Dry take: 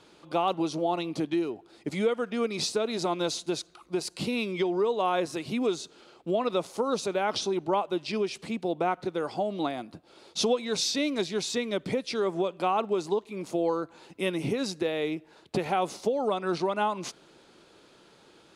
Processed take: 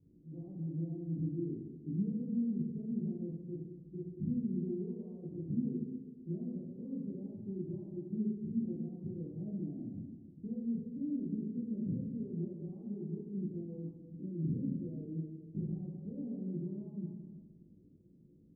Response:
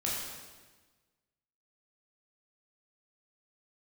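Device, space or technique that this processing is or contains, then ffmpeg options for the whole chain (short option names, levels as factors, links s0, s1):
club heard from the street: -filter_complex "[0:a]alimiter=level_in=1.12:limit=0.0631:level=0:latency=1:release=131,volume=0.891,lowpass=f=250:w=0.5412,lowpass=f=250:w=1.3066[s0];[1:a]atrim=start_sample=2205[s1];[s0][s1]afir=irnorm=-1:irlink=0,volume=0.708"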